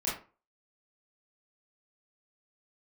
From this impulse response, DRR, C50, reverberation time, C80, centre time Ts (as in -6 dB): -8.0 dB, 4.5 dB, 0.35 s, 11.0 dB, 40 ms